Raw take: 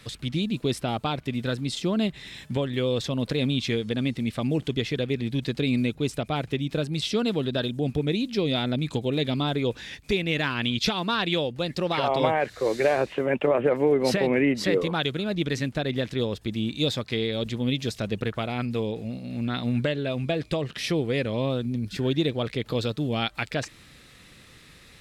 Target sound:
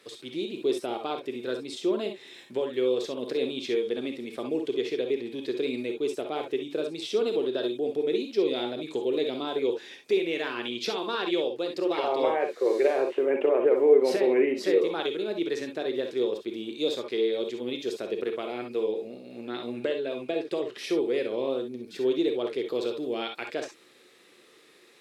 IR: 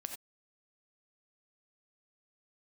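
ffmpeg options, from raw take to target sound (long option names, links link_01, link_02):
-filter_complex "[0:a]highpass=frequency=380:width_type=q:width=3.6[link_01];[1:a]atrim=start_sample=2205,asetrate=61740,aresample=44100[link_02];[link_01][link_02]afir=irnorm=-1:irlink=0,volume=-1.5dB"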